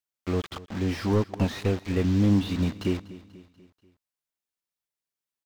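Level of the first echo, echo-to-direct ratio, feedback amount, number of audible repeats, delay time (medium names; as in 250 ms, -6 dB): -18.5 dB, -17.0 dB, 53%, 3, 243 ms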